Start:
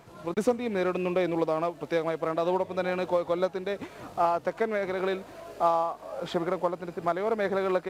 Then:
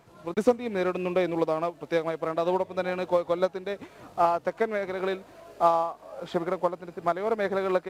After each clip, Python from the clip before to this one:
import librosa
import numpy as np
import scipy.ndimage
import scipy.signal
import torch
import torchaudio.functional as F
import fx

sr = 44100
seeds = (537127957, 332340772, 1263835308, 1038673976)

y = fx.upward_expand(x, sr, threshold_db=-36.0, expansion=1.5)
y = y * 10.0 ** (4.0 / 20.0)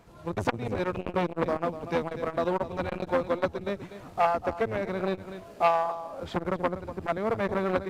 y = fx.octave_divider(x, sr, octaves=1, level_db=1.0)
y = y + 10.0 ** (-13.5 / 20.0) * np.pad(y, (int(244 * sr / 1000.0), 0))[:len(y)]
y = fx.transformer_sat(y, sr, knee_hz=1500.0)